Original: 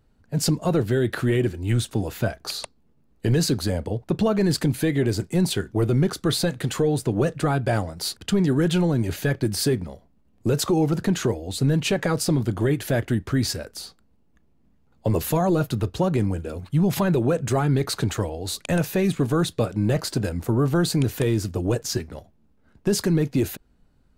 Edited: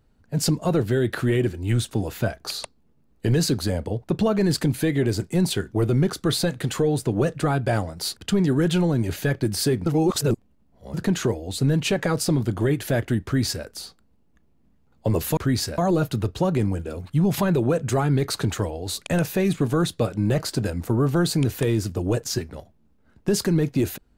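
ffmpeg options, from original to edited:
-filter_complex "[0:a]asplit=5[a][b][c][d][e];[a]atrim=end=9.862[f];[b]atrim=start=9.858:end=10.942,asetpts=PTS-STARTPTS,areverse[g];[c]atrim=start=10.938:end=15.372[h];[d]atrim=start=13.238:end=13.652[i];[e]atrim=start=15.368[j];[f][g]acrossfade=d=0.004:c1=hsin:c2=hsin[k];[k][h]acrossfade=d=0.004:c1=hsin:c2=hsin[l];[l][i]acrossfade=d=0.004:c1=hsin:c2=hsin[m];[m][j]acrossfade=d=0.004:c1=hsin:c2=hsin"

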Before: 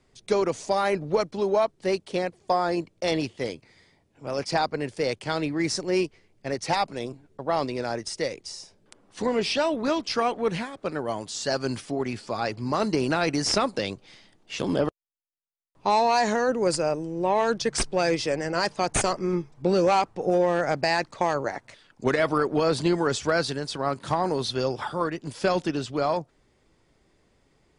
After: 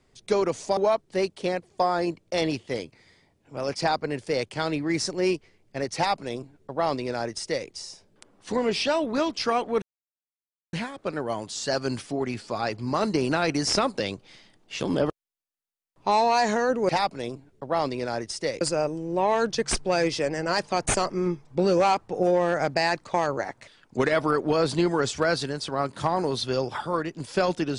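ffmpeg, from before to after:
-filter_complex "[0:a]asplit=5[a][b][c][d][e];[a]atrim=end=0.772[f];[b]atrim=start=1.468:end=10.52,asetpts=PTS-STARTPTS,afade=t=out:st=9.048:d=0.004:c=hsin,apad=pad_dur=0.91[g];[c]atrim=start=10.52:end=16.682,asetpts=PTS-STARTPTS,afade=t=in:d=0.004:c=hsin[h];[d]atrim=start=6.658:end=8.382[i];[e]atrim=start=16.678[j];[g][h]concat=n=2:v=0:a=1[k];[f][k]acrossfade=d=0.004:c1=hsin:c2=hsin[l];[l][i]acrossfade=d=0.004:c1=hsin:c2=hsin[m];[m][j]acrossfade=d=0.004:c1=hsin:c2=hsin"

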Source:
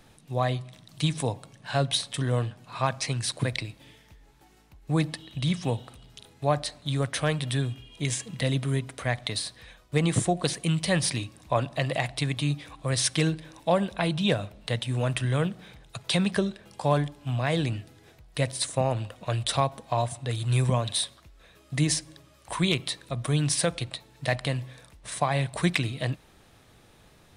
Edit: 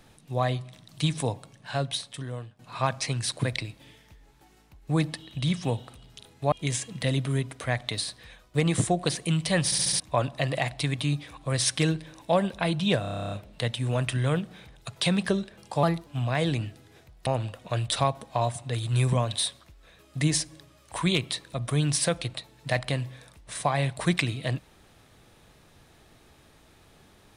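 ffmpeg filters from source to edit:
-filter_complex "[0:a]asplit=21[a][b][c][d][e][f][g][h][i][j][k][l][m][n][o][p][q][r][s][t][u];[a]atrim=end=2.59,asetpts=PTS-STARTPTS,afade=t=out:st=1.32:d=1.27:silence=0.149624[v];[b]atrim=start=2.59:end=6.522,asetpts=PTS-STARTPTS,afade=t=in:d=0.004:c=hsin:silence=0.149624[w];[c]atrim=start=7.898:end=11.102[x];[d]atrim=start=11.028:end=11.102[y];[e]atrim=start=11.028:end=11.102[z];[f]atrim=start=11.028:end=11.102[aa];[g]atrim=start=11.028:end=11.102[ab];[h]atrim=start=11.378:end=14.422[ac];[i]atrim=start=14.388:end=14.422[ad];[j]atrim=start=14.388:end=14.422[ae];[k]atrim=start=14.388:end=14.422[af];[l]atrim=start=14.388:end=14.422[ag];[m]atrim=start=14.388:end=14.422[ah];[n]atrim=start=14.388:end=14.422[ai];[o]atrim=start=14.388:end=14.422[aj];[p]atrim=start=14.388:end=14.422[ak];[q]atrim=start=14.388:end=14.422[al];[r]atrim=start=14.388:end=16.914[am];[s]atrim=start=16.91:end=17.18,asetpts=PTS-STARTPTS,asetrate=50715,aresample=44100[an];[t]atrim=start=17.176:end=18.382[ao];[u]atrim=start=18.828[ap];[v][w]concat=n=2:v=0:a=1[aq];[aq][x]acrossfade=d=0.004:c1=hsin:c2=hsin[ar];[ar][y]acrossfade=d=0.004:c1=hsin:c2=hsin[as];[as][z]acrossfade=d=0.004:c1=hsin:c2=hsin[at];[at][aa]acrossfade=d=0.004:c1=hsin:c2=hsin[au];[au][ab]acrossfade=d=0.004:c1=hsin:c2=hsin[av];[av][ac]acrossfade=d=0.004:c1=hsin:c2=hsin[aw];[aw][ad]acrossfade=d=0.004:c1=hsin:c2=hsin[ax];[ax][ae]acrossfade=d=0.004:c1=hsin:c2=hsin[ay];[ay][af]acrossfade=d=0.004:c1=hsin:c2=hsin[az];[az][ag]acrossfade=d=0.004:c1=hsin:c2=hsin[ba];[ba][ah]acrossfade=d=0.004:c1=hsin:c2=hsin[bb];[bb][ai]acrossfade=d=0.004:c1=hsin:c2=hsin[bc];[bc][aj]acrossfade=d=0.004:c1=hsin:c2=hsin[bd];[bd][ak]acrossfade=d=0.004:c1=hsin:c2=hsin[be];[be][al]acrossfade=d=0.004:c1=hsin:c2=hsin[bf];[bf][am]acrossfade=d=0.004:c1=hsin:c2=hsin[bg];[bg][an]acrossfade=d=0.004:c1=hsin:c2=hsin[bh];[bh][ao]acrossfade=d=0.004:c1=hsin:c2=hsin[bi];[bi][ap]acrossfade=d=0.004:c1=hsin:c2=hsin"

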